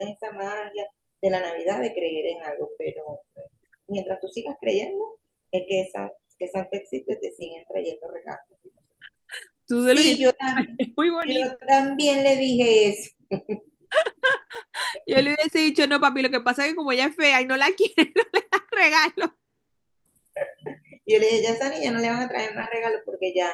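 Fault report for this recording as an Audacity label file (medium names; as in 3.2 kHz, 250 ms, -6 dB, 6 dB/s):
11.220000	11.220000	dropout 3.8 ms
14.550000	14.550000	dropout 3.5 ms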